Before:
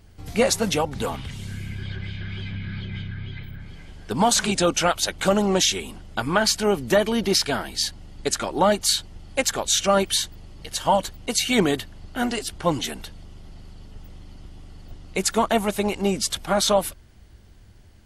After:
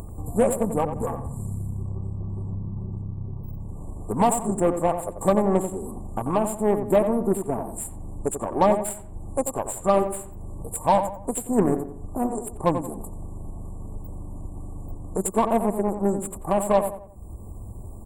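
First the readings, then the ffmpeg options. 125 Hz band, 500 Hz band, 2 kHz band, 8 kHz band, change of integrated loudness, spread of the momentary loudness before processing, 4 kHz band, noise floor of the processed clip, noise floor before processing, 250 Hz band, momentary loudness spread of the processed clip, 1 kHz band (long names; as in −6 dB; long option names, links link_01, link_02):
+1.0 dB, +0.5 dB, −13.5 dB, −8.0 dB, −2.0 dB, 14 LU, −24.0 dB, −39 dBFS, −49 dBFS, 0.0 dB, 18 LU, 0.0 dB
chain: -filter_complex "[0:a]afftfilt=real='re*(1-between(b*sr/4096,1200,7100))':imag='im*(1-between(b*sr/4096,1200,7100))':win_size=4096:overlap=0.75,aeval=exprs='0.447*(cos(1*acos(clip(val(0)/0.447,-1,1)))-cos(1*PI/2))+0.0224*(cos(2*acos(clip(val(0)/0.447,-1,1)))-cos(2*PI/2))+0.0126*(cos(7*acos(clip(val(0)/0.447,-1,1)))-cos(7*PI/2))+0.02*(cos(8*acos(clip(val(0)/0.447,-1,1)))-cos(8*PI/2))':channel_layout=same,acompressor=mode=upward:threshold=-24dB:ratio=2.5,asplit=2[link_01][link_02];[link_02]adelay=89,lowpass=frequency=1800:poles=1,volume=-8dB,asplit=2[link_03][link_04];[link_04]adelay=89,lowpass=frequency=1800:poles=1,volume=0.38,asplit=2[link_05][link_06];[link_06]adelay=89,lowpass=frequency=1800:poles=1,volume=0.38,asplit=2[link_07][link_08];[link_08]adelay=89,lowpass=frequency=1800:poles=1,volume=0.38[link_09];[link_01][link_03][link_05][link_07][link_09]amix=inputs=5:normalize=0,adynamicequalizer=threshold=0.00562:dfrequency=3900:dqfactor=0.7:tfrequency=3900:tqfactor=0.7:attack=5:release=100:ratio=0.375:range=4:mode=cutabove:tftype=highshelf"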